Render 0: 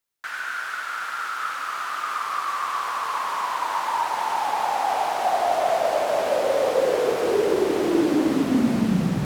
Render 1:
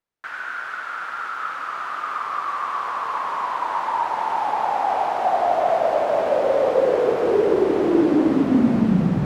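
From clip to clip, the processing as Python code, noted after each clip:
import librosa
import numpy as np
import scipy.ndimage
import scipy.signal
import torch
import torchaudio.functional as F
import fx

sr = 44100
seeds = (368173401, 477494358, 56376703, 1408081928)

y = fx.lowpass(x, sr, hz=3900.0, slope=6)
y = fx.high_shelf(y, sr, hz=2100.0, db=-9.5)
y = y * librosa.db_to_amplitude(3.5)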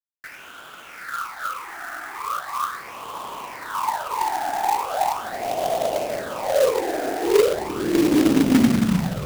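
y = fx.phaser_stages(x, sr, stages=8, low_hz=140.0, high_hz=1700.0, hz=0.39, feedback_pct=50)
y = fx.quant_companded(y, sr, bits=4)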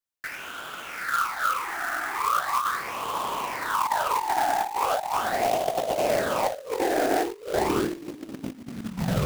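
y = fx.over_compress(x, sr, threshold_db=-26.0, ratio=-0.5)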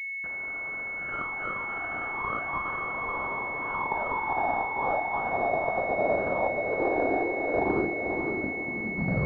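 y = fx.echo_diffused(x, sr, ms=518, feedback_pct=42, wet_db=-4.0)
y = fx.pwm(y, sr, carrier_hz=2200.0)
y = y * librosa.db_to_amplitude(-2.5)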